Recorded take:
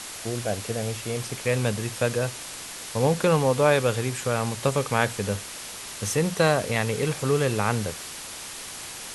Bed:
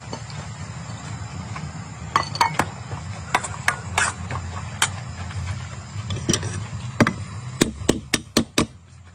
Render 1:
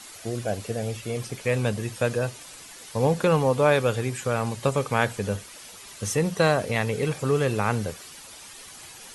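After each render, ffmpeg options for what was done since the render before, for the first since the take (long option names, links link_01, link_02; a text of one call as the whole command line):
ffmpeg -i in.wav -af "afftdn=noise_reduction=10:noise_floor=-38" out.wav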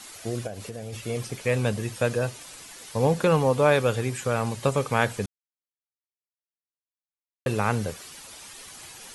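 ffmpeg -i in.wav -filter_complex "[0:a]asplit=3[link_01][link_02][link_03];[link_01]afade=type=out:start_time=0.46:duration=0.02[link_04];[link_02]acompressor=threshold=-32dB:ratio=6:attack=3.2:release=140:knee=1:detection=peak,afade=type=in:start_time=0.46:duration=0.02,afade=type=out:start_time=0.92:duration=0.02[link_05];[link_03]afade=type=in:start_time=0.92:duration=0.02[link_06];[link_04][link_05][link_06]amix=inputs=3:normalize=0,asplit=3[link_07][link_08][link_09];[link_07]atrim=end=5.26,asetpts=PTS-STARTPTS,afade=type=out:start_time=5.256:duration=0.004:curve=hsin[link_10];[link_08]atrim=start=5.26:end=7.46,asetpts=PTS-STARTPTS,volume=0[link_11];[link_09]atrim=start=7.46,asetpts=PTS-STARTPTS,afade=type=in:duration=0.004:curve=hsin[link_12];[link_10][link_11][link_12]concat=n=3:v=0:a=1" out.wav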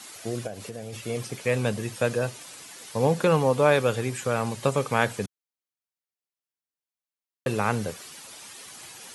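ffmpeg -i in.wav -af "highpass=110" out.wav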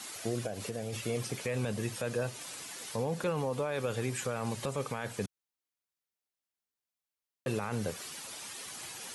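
ffmpeg -i in.wav -af "acompressor=threshold=-31dB:ratio=2,alimiter=limit=-23dB:level=0:latency=1:release=16" out.wav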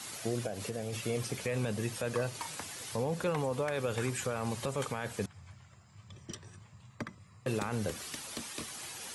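ffmpeg -i in.wav -i bed.wav -filter_complex "[1:a]volume=-24dB[link_01];[0:a][link_01]amix=inputs=2:normalize=0" out.wav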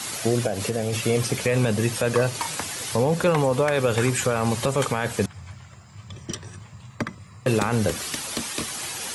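ffmpeg -i in.wav -af "volume=12dB" out.wav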